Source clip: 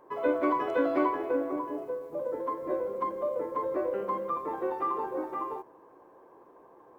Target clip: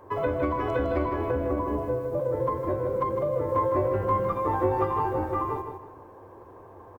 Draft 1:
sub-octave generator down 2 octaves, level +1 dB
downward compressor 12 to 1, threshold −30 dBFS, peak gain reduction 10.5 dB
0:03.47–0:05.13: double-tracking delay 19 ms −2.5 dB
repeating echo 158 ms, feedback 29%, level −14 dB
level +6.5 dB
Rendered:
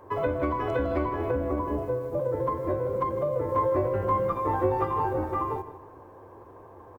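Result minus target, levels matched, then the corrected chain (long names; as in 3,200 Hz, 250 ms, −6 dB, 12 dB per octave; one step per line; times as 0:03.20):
echo-to-direct −7 dB
sub-octave generator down 2 octaves, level +1 dB
downward compressor 12 to 1, threshold −30 dBFS, peak gain reduction 10.5 dB
0:03.47–0:05.13: double-tracking delay 19 ms −2.5 dB
repeating echo 158 ms, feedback 29%, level −7 dB
level +6.5 dB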